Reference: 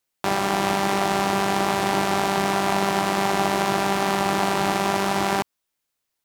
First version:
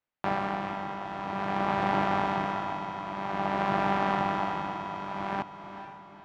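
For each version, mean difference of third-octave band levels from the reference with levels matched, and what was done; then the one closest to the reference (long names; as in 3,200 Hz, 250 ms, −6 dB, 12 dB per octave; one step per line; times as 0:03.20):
9.0 dB: low-pass filter 2,100 Hz 12 dB per octave
parametric band 390 Hz −6.5 dB 0.35 octaves
amplitude tremolo 0.51 Hz, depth 74%
feedback delay with all-pass diffusion 460 ms, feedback 46%, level −10 dB
level −3 dB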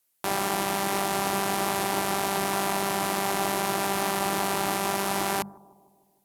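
2.5 dB: parametric band 12,000 Hz +12.5 dB 1 octave
mains-hum notches 50/100/150/200 Hz
brickwall limiter −10 dBFS, peak gain reduction 8 dB
bucket-brigade delay 153 ms, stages 1,024, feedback 60%, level −21 dB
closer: second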